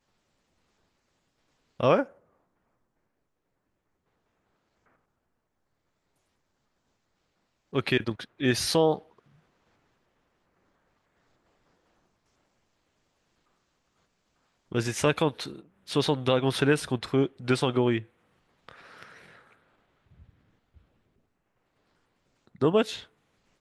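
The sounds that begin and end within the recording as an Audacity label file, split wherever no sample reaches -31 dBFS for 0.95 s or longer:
1.800000	2.030000	sound
7.750000	8.970000	sound
14.720000	19.030000	sound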